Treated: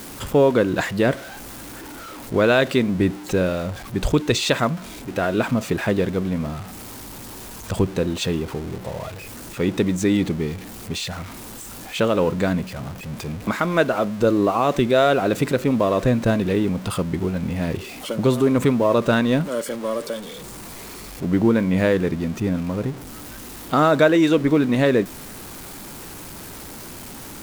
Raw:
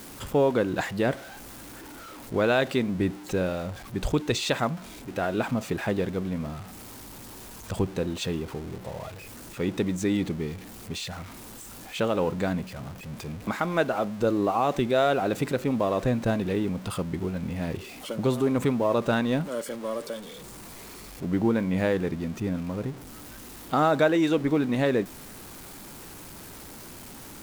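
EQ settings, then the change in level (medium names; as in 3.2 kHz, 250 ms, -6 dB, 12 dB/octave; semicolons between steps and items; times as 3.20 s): dynamic bell 800 Hz, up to -7 dB, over -47 dBFS, Q 6.9; +6.5 dB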